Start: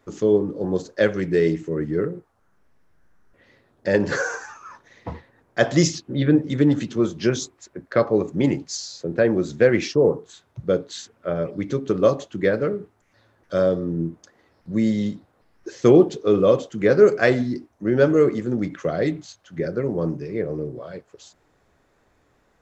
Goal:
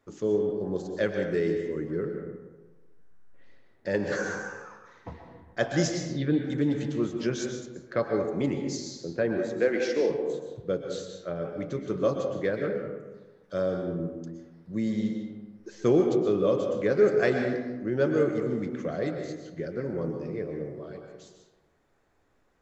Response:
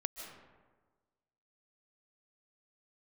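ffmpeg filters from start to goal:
-filter_complex "[0:a]asettb=1/sr,asplit=3[s0][s1][s2];[s0]atrim=end=9.384[s3];[s1]atrim=start=9.38:end=10.1,asetpts=PTS-STARTPTS,afade=t=in:d=0.004:c=qsin,afade=t=out:st=0.716:d=0.004:c=qsin,highpass=f=240:w=0.5412,highpass=f=240:w=1.3066[s4];[s2]atrim=start=10.096[s5];[s3][s4]acrossfade=d=0.004:c1=hsin:c2=qsin[s6];[s6][s5]acrossfade=d=0.004:c1=qsin:c2=hsin[s7];[1:a]atrim=start_sample=2205,asetrate=52920,aresample=44100[s8];[s7][s8]afir=irnorm=-1:irlink=0,volume=0.531"

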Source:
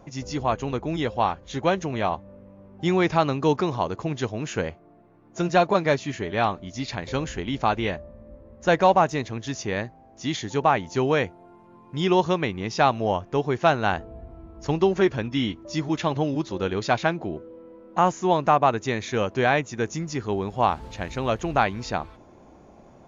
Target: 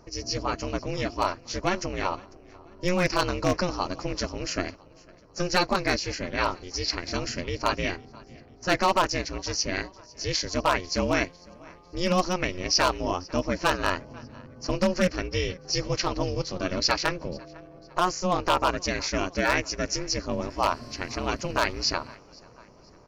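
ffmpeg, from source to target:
-filter_complex "[0:a]superequalizer=8b=0.398:13b=0.447:14b=3.98,asplit=2[s0][s1];[s1]aecho=0:1:499|998|1497:0.0668|0.0348|0.0181[s2];[s0][s2]amix=inputs=2:normalize=0,aeval=exprs='0.251*(abs(mod(val(0)/0.251+3,4)-2)-1)':c=same,aeval=exprs='val(0)*sin(2*PI*180*n/s)':c=same,adynamicequalizer=threshold=0.0126:dfrequency=1500:dqfactor=0.7:tfrequency=1500:tqfactor=0.7:attack=5:release=100:ratio=0.375:range=2.5:mode=boostabove:tftype=highshelf"

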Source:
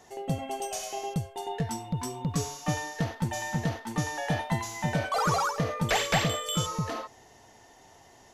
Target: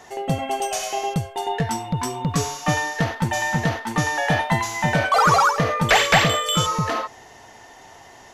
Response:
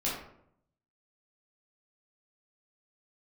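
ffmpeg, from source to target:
-af "equalizer=f=1600:w=0.5:g=6.5,acontrast=58"

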